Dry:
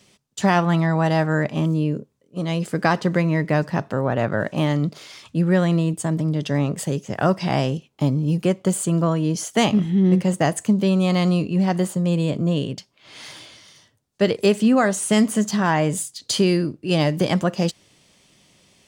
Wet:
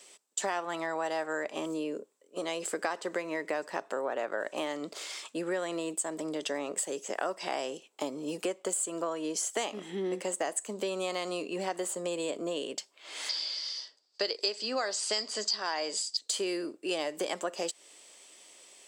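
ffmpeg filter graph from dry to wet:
-filter_complex "[0:a]asettb=1/sr,asplit=3[a][b][c];[a]atrim=end=13.294[d];[b]atrim=start=13.29:end=16.17,asetpts=PTS-STARTPTS,afade=t=in:d=0.004:c=qsin,afade=t=out:st=2.876:d=0.004:c=qsin,lowpass=f=4.8k:t=q:w=14,lowshelf=f=170:g=-10[e];[c]atrim=start=16.166[f];[d][e]acrossfade=d=0.004:c1=hsin:c2=qsin[g];[g][f]acrossfade=d=0.004:c1=qsin:c2=hsin,highpass=f=360:w=0.5412,highpass=f=360:w=1.3066,equalizer=f=7.8k:t=o:w=0.26:g=12.5,acompressor=threshold=-31dB:ratio=4"

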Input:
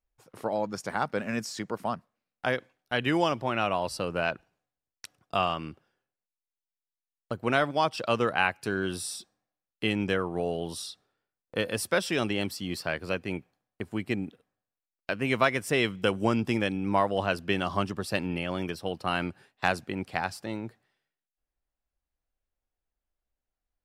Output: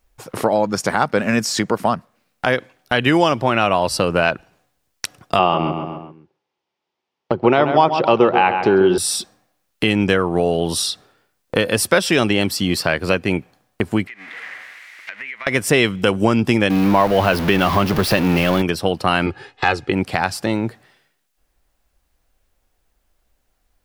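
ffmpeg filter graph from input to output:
-filter_complex "[0:a]asettb=1/sr,asplit=3[a][b][c];[a]atrim=end=5.394[d];[b]atrim=start=5.39:end=8.98,asetpts=PTS-STARTPTS,afade=t=in:d=0.004:c=qsin,afade=t=out:st=3.586:d=0.004:c=qsin,highpass=110,equalizer=f=160:t=q:w=4:g=4,equalizer=f=370:t=q:w=4:g=10,equalizer=f=530:t=q:w=4:g=3,equalizer=f=860:t=q:w=4:g=9,equalizer=f=1.6k:t=q:w=4:g=-5,equalizer=f=4.1k:t=q:w=4:g=-5,lowpass=f=4.6k:w=0.5412,lowpass=f=4.6k:w=1.3066,asplit=2[e][f];[f]adelay=133,lowpass=f=3.1k:p=1,volume=-10dB,asplit=2[g][h];[h]adelay=133,lowpass=f=3.1k:p=1,volume=0.42,asplit=2[i][j];[j]adelay=133,lowpass=f=3.1k:p=1,volume=0.42,asplit=2[k][l];[l]adelay=133,lowpass=f=3.1k:p=1,volume=0.42[m];[e][g][i][k][m]amix=inputs=5:normalize=0,atrim=end_sample=158319[n];[c]atrim=start=8.976[o];[d][n]acrossfade=d=0.004:c1=hsin:c2=qsin[p];[p][o]acrossfade=d=0.004:c1=qsin:c2=hsin,asettb=1/sr,asplit=3[q][r][s];[q]atrim=end=14.074[t];[r]atrim=start=14.07:end=15.47,asetpts=PTS-STARTPTS,afade=t=in:d=0.004:c=qsin,afade=t=out:st=1.396:d=0.004:c=qsin,aeval=exprs='val(0)+0.5*0.02*sgn(val(0))':c=same,bandpass=f=2k:t=q:w=6.7,acompressor=threshold=-48dB:ratio=12:attack=3.2:release=140:knee=1:detection=peak[u];[s]atrim=start=15.466[v];[t][u]acrossfade=d=0.004:c1=hsin:c2=qsin[w];[w][v]acrossfade=d=0.004:c1=qsin:c2=hsin,asettb=1/sr,asplit=3[x][y][z];[x]atrim=end=16.704[aa];[y]atrim=start=16.7:end=18.62,asetpts=PTS-STARTPTS,afade=t=in:d=0.004:c=qsin,afade=t=out:st=1.916:d=0.004:c=qsin,aeval=exprs='val(0)+0.5*0.0299*sgn(val(0))':c=same,equalizer=f=7.9k:w=1.4:g=-11[ab];[z]atrim=start=18.616[ac];[aa][ab]acrossfade=d=0.004:c1=hsin:c2=qsin[ad];[ad][ac]acrossfade=d=0.004:c1=qsin:c2=hsin,asettb=1/sr,asplit=3[ae][af][ag];[ae]atrim=end=19.264[ah];[af]atrim=start=19.26:end=19.92,asetpts=PTS-STARTPTS,afade=t=in:d=0.004:c=qsin,afade=t=out:st=0.656:d=0.004:c=qsin,lowpass=5.3k,aecho=1:1:2.4:0.73,atrim=end_sample=29106[ai];[ag]atrim=start=19.916[aj];[ah][ai]acrossfade=d=0.004:c1=hsin:c2=qsin[ak];[ak][aj]acrossfade=d=0.004:c1=qsin:c2=hsin,acompressor=threshold=-41dB:ratio=2,alimiter=level_in=22dB:limit=-1dB:release=50:level=0:latency=1,volume=-1dB"

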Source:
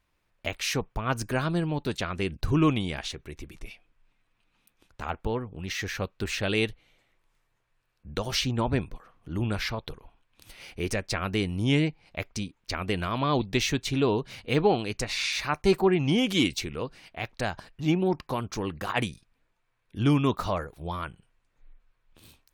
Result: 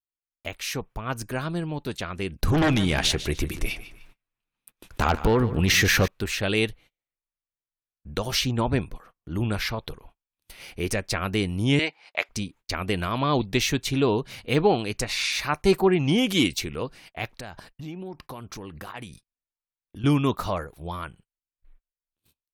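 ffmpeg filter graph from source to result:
-filter_complex "[0:a]asettb=1/sr,asplit=3[a][b][c];[a]atrim=end=2.434[d];[b]atrim=start=2.43:end=6.08,asetpts=PTS-STARTPTS,afade=t=in:d=0.004:c=qsin,afade=t=out:st=3.646:d=0.004:c=qsin,aeval=exprs='0.282*sin(PI/2*2.82*val(0)/0.282)':c=same,acompressor=threshold=-18dB:ratio=6:attack=3.2:release=140:knee=1:detection=peak,aecho=1:1:149|298|447:0.188|0.0603|0.0193,atrim=end_sample=160965[e];[c]atrim=start=6.076[f];[d][e]acrossfade=d=0.004:c1=hsin:c2=qsin[g];[g][f]acrossfade=d=0.004:c1=qsin:c2=hsin,asettb=1/sr,asplit=3[h][i][j];[h]atrim=end=11.794[k];[i]atrim=start=11.79:end=12.29,asetpts=PTS-STARTPTS,afade=t=in:d=0.004:c=qsin,afade=t=out:st=0.496:d=0.004:c=qsin,highpass=720,lowpass=6.5k,acontrast=81[l];[j]atrim=start=12.286[m];[k][l]acrossfade=d=0.004:c1=hsin:c2=qsin[n];[n][m]acrossfade=d=0.004:c1=qsin:c2=hsin,asettb=1/sr,asplit=3[o][p][q];[o]atrim=end=17.364[r];[p]atrim=start=17.36:end=20.04,asetpts=PTS-STARTPTS,afade=t=in:d=0.004:c=qsin,afade=t=out:st=2.676:d=0.004:c=qsin,bandreject=f=6.7k:w=15,acompressor=threshold=-38dB:ratio=4:attack=3.2:release=140:knee=1:detection=peak[s];[q]atrim=start=20.036[t];[r][s]acrossfade=d=0.004:c1=hsin:c2=qsin[u];[u][t]acrossfade=d=0.004:c1=qsin:c2=hsin,agate=range=-31dB:threshold=-50dB:ratio=16:detection=peak,equalizer=f=12k:t=o:w=0.66:g=7,dynaudnorm=f=820:g=7:m=5dB,volume=-2.5dB"

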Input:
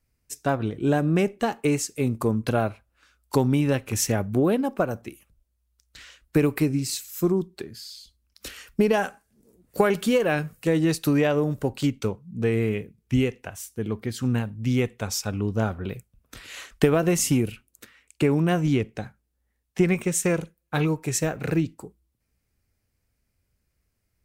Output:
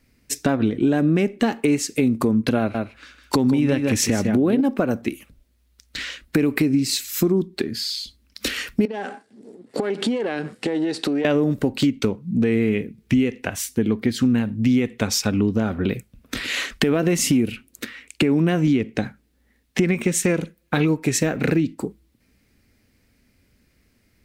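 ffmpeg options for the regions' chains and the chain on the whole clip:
-filter_complex "[0:a]asettb=1/sr,asplit=3[a][b][c];[a]atrim=end=2.594[d];[b]atrim=start=2.59:end=4.61,asetpts=PTS-STARTPTS,afade=t=in:d=0.004:c=qsin,afade=t=out:st=2.016:d=0.004:c=qsin,equalizer=f=14k:t=o:w=0.45:g=-4.5,aecho=1:1:154:0.376,atrim=end_sample=89082[e];[c]atrim=start=4.606[f];[d][e]acrossfade=d=0.004:c1=hsin:c2=qsin[g];[g][f]acrossfade=d=0.004:c1=qsin:c2=hsin,asettb=1/sr,asplit=3[h][i][j];[h]atrim=end=8.854[k];[i]atrim=start=8.85:end=11.25,asetpts=PTS-STARTPTS,afade=t=in:d=0.004:c=qsin,afade=t=out:st=2.396:d=0.004:c=qsin,aeval=exprs='if(lt(val(0),0),0.447*val(0),val(0))':c=same,highpass=f=130:w=0.5412,highpass=f=130:w=1.3066,equalizer=f=160:t=q:w=4:g=-8,equalizer=f=410:t=q:w=4:g=6,equalizer=f=800:t=q:w=4:g=6,equalizer=f=2.4k:t=q:w=4:g=-4,equalizer=f=6.3k:t=q:w=4:g=-6,lowpass=f=8.7k:w=0.5412,lowpass=f=8.7k:w=1.3066,acompressor=threshold=-34dB:ratio=6:attack=3.2:release=140:knee=1:detection=peak[l];[j]atrim=start=11.246[m];[k][l]acrossfade=d=0.004:c1=hsin:c2=qsin[n];[n][m]acrossfade=d=0.004:c1=qsin:c2=hsin,equalizer=f=250:t=o:w=1:g=12,equalizer=f=500:t=o:w=1:g=3,equalizer=f=2k:t=o:w=1:g=7,equalizer=f=4k:t=o:w=1:g=6,alimiter=limit=-8.5dB:level=0:latency=1:release=111,acompressor=threshold=-30dB:ratio=2.5,volume=9dB"

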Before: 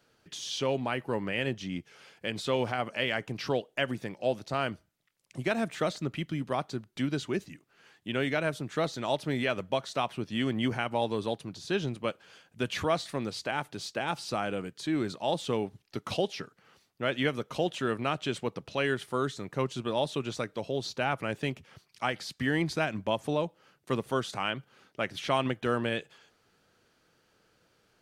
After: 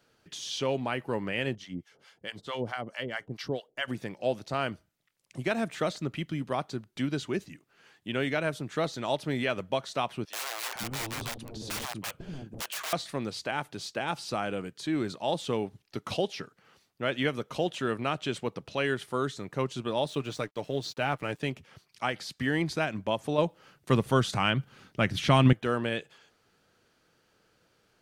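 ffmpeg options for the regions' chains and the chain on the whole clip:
-filter_complex "[0:a]asettb=1/sr,asplit=3[a][b][c];[a]atrim=end=1.554[d];[b]atrim=start=1.55:end=3.88,asetpts=PTS-STARTPTS,afade=t=in:d=0.004:c=qsin,afade=t=out:st=2.326:d=0.004:c=qsin,bandreject=f=2.5k:w=8,acrossover=split=680[e][f];[e]aeval=exprs='val(0)*(1-1/2+1/2*cos(2*PI*4.6*n/s))':c=same[g];[f]aeval=exprs='val(0)*(1-1/2-1/2*cos(2*PI*4.6*n/s))':c=same[h];[g][h]amix=inputs=2:normalize=0[i];[c]atrim=start=3.876[j];[d][i]acrossfade=d=0.004:c1=hsin:c2=qsin[k];[k][j]acrossfade=d=0.004:c1=qsin:c2=hsin,asettb=1/sr,asplit=3[l][m][n];[l]atrim=end=10.254[o];[m]atrim=start=10.25:end=12.93,asetpts=PTS-STARTPTS,afade=t=in:d=0.004:c=qsin,afade=t=out:st=2.676:d=0.004:c=qsin,aeval=exprs='(mod(28.2*val(0)+1,2)-1)/28.2':c=same,acrossover=split=510[p][q];[p]adelay=500[r];[r][q]amix=inputs=2:normalize=0,atrim=end_sample=118188[s];[n]atrim=start=12.926[t];[o][s]acrossfade=d=0.004:c1=hsin:c2=qsin[u];[u][t]acrossfade=d=0.004:c1=qsin:c2=hsin,asettb=1/sr,asplit=3[v][w][x];[v]atrim=end=20.074[y];[w]atrim=start=20.07:end=21.4,asetpts=PTS-STARTPTS,afade=t=in:d=0.004:c=qsin,afade=t=out:st=1.326:d=0.004:c=qsin,aeval=exprs='sgn(val(0))*max(abs(val(0))-0.00188,0)':c=same,aecho=1:1:6.7:0.33,atrim=end_sample=58653[z];[x]atrim=start=21.396[aa];[y][z]acrossfade=d=0.004:c1=hsin:c2=qsin[ab];[ab][aa]acrossfade=d=0.004:c1=qsin:c2=hsin,asettb=1/sr,asplit=3[ac][ad][ae];[ac]atrim=end=23.384[af];[ad]atrim=start=23.38:end=25.53,asetpts=PTS-STARTPTS,afade=t=in:d=0.004:c=qsin,afade=t=out:st=2.146:d=0.004:c=qsin,asubboost=boost=6.5:cutoff=230,acontrast=30[ag];[ae]atrim=start=25.526[ah];[af][ag]acrossfade=d=0.004:c1=hsin:c2=qsin[ai];[ai][ah]acrossfade=d=0.004:c1=qsin:c2=hsin"

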